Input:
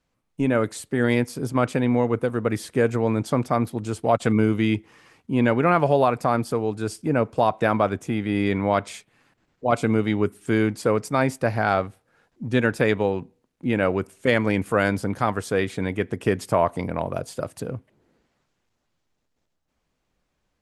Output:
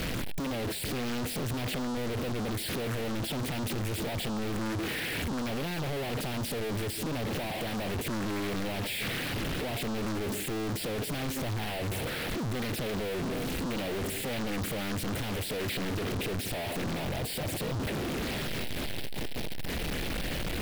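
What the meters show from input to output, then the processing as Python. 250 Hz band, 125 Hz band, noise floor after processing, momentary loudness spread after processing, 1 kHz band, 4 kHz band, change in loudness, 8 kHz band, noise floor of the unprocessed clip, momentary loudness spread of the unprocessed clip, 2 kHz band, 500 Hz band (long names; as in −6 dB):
−9.5 dB, −7.0 dB, −35 dBFS, 2 LU, −13.0 dB, +3.5 dB, −10.0 dB, +2.0 dB, −75 dBFS, 8 LU, −7.0 dB, −12.0 dB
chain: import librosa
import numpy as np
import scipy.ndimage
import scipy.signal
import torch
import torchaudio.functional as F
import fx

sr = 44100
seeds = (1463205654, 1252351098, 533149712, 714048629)

y = np.sign(x) * np.sqrt(np.mean(np.square(x)))
y = fx.fixed_phaser(y, sr, hz=2800.0, stages=4)
y = fx.doppler_dist(y, sr, depth_ms=0.85)
y = F.gain(torch.from_numpy(y), -6.5).numpy()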